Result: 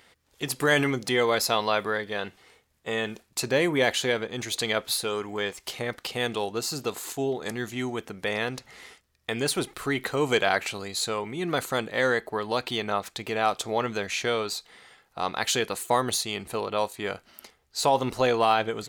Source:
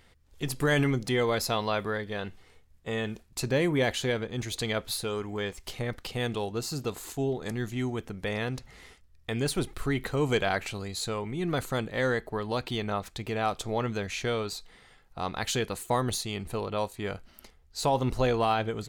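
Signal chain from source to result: high-pass 410 Hz 6 dB/octave; trim +5.5 dB

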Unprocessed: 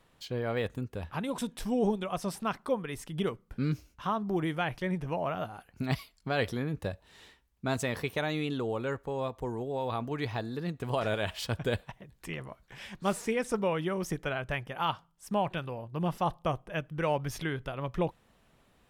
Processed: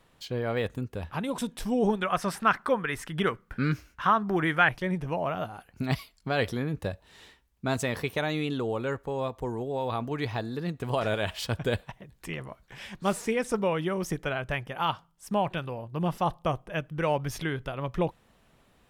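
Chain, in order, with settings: 1.89–4.69 s: peaking EQ 1.6 kHz +12.5 dB 1.2 oct; trim +2.5 dB

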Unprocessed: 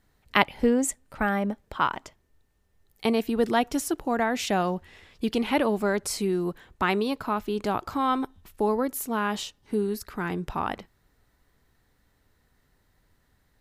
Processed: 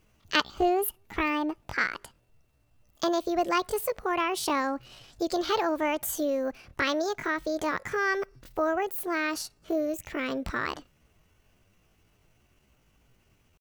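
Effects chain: in parallel at +1 dB: compression, threshold -32 dBFS, peak gain reduction 16.5 dB; on the sum: pitch shift +7 st; trim -5 dB

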